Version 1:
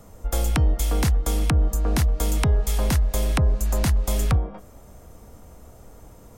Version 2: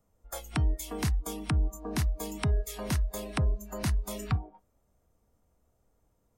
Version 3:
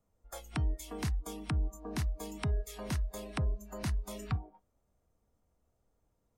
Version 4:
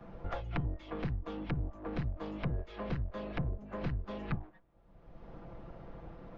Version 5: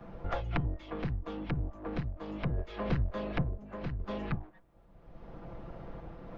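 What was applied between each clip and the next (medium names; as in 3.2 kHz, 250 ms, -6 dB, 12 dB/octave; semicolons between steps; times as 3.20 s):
spectral noise reduction 19 dB; trim -6.5 dB
treble shelf 11 kHz -7 dB; trim -5 dB
comb filter that takes the minimum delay 5.9 ms; Gaussian low-pass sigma 2.9 samples; three bands compressed up and down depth 100%; trim +1 dB
random-step tremolo; trim +5.5 dB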